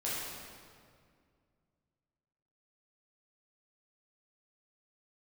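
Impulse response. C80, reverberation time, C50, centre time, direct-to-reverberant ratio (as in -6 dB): -0.5 dB, 2.1 s, -2.5 dB, 0.131 s, -8.5 dB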